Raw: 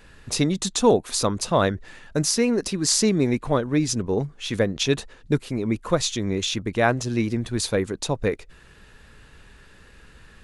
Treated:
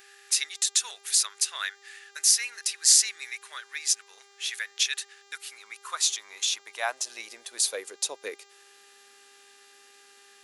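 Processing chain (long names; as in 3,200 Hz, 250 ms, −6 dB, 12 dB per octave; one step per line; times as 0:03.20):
first difference
high-pass filter sweep 1,700 Hz → 270 Hz, 0:05.13–0:08.97
hum with harmonics 400 Hz, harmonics 19, −62 dBFS −2 dB per octave
level +4 dB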